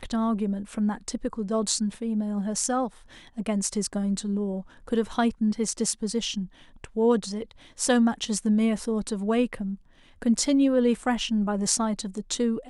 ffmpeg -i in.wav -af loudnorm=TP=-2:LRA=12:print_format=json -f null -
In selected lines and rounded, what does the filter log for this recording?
"input_i" : "-26.1",
"input_tp" : "-4.8",
"input_lra" : "3.1",
"input_thresh" : "-36.4",